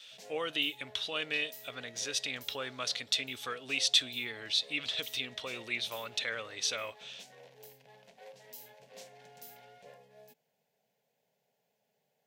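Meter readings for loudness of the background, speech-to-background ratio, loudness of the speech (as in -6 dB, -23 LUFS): -53.0 LUFS, 19.5 dB, -33.5 LUFS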